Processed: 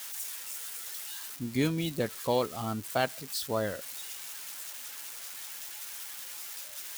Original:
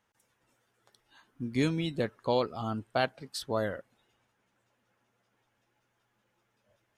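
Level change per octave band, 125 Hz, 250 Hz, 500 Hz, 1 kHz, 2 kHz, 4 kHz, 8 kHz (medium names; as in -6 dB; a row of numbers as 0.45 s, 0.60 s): 0.0 dB, 0.0 dB, 0.0 dB, 0.0 dB, +1.0 dB, +3.5 dB, +14.5 dB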